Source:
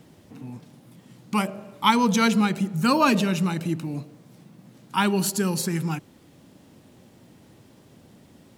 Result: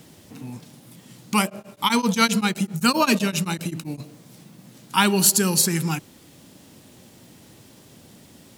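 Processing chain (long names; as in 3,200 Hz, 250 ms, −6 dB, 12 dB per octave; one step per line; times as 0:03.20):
high-shelf EQ 2,800 Hz +10 dB
0:01.44–0:04.00: tremolo along a rectified sine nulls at 7.7 Hz
level +2 dB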